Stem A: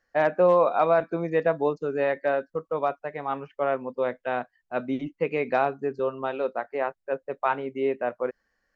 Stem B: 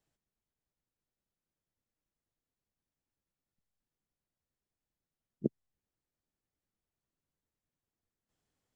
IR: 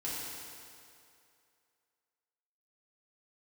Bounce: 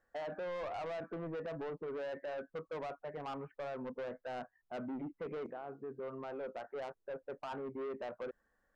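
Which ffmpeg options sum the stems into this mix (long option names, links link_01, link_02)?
-filter_complex "[0:a]lowpass=frequency=1600:width=0.5412,lowpass=frequency=1600:width=1.3066,alimiter=limit=-20dB:level=0:latency=1:release=51,volume=-1dB[link_01];[1:a]highpass=380,volume=-8dB,asplit=3[link_02][link_03][link_04];[link_03]volume=-13.5dB[link_05];[link_04]apad=whole_len=385940[link_06];[link_01][link_06]sidechaincompress=threshold=-50dB:ratio=8:attack=30:release=1420[link_07];[2:a]atrim=start_sample=2205[link_08];[link_05][link_08]afir=irnorm=-1:irlink=0[link_09];[link_07][link_02][link_09]amix=inputs=3:normalize=0,asoftclip=type=tanh:threshold=-32.5dB,alimiter=level_in=13.5dB:limit=-24dB:level=0:latency=1:release=36,volume=-13.5dB"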